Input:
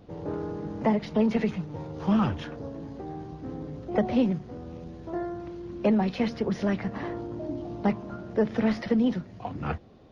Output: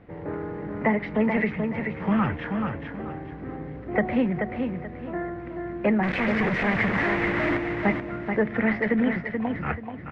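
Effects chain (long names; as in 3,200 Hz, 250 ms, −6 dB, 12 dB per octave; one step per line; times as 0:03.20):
0:06.03–0:07.57: log-companded quantiser 2 bits
low-pass with resonance 2,000 Hz, resonance Q 4.4
repeating echo 432 ms, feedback 29%, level −5.5 dB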